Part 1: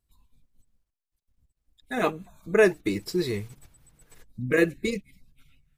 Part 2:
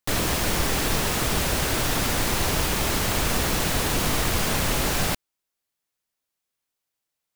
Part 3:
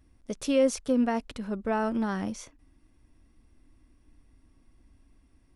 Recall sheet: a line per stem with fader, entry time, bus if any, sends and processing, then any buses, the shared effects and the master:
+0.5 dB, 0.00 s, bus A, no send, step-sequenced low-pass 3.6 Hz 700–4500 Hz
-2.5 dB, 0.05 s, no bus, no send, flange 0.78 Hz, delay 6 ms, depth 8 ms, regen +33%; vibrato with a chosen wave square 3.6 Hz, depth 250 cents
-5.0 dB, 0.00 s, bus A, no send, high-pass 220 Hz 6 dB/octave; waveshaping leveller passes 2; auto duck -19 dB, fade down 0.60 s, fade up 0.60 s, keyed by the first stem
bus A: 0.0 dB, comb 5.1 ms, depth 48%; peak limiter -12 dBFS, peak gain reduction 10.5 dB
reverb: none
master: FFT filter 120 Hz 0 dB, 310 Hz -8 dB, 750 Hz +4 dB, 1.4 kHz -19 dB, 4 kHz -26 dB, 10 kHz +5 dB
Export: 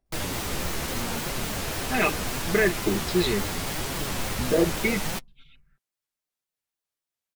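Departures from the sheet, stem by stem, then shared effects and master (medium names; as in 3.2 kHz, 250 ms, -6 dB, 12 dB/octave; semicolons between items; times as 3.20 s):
stem 3 -5.0 dB -> -11.5 dB; master: missing FFT filter 120 Hz 0 dB, 310 Hz -8 dB, 750 Hz +4 dB, 1.4 kHz -19 dB, 4 kHz -26 dB, 10 kHz +5 dB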